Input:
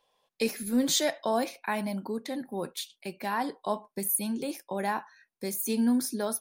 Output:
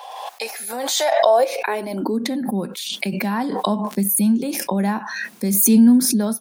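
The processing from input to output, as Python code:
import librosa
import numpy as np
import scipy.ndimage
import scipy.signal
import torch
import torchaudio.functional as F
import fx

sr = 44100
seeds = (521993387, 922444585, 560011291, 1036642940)

y = fx.dmg_crackle(x, sr, seeds[0], per_s=fx.line((3.86, 52.0), (4.43, 200.0)), level_db=-56.0, at=(3.86, 4.43), fade=0.02)
y = fx.filter_sweep_highpass(y, sr, from_hz=770.0, to_hz=200.0, start_s=1.08, end_s=2.41, q=4.9)
y = fx.pre_swell(y, sr, db_per_s=31.0)
y = y * librosa.db_to_amplitude(3.5)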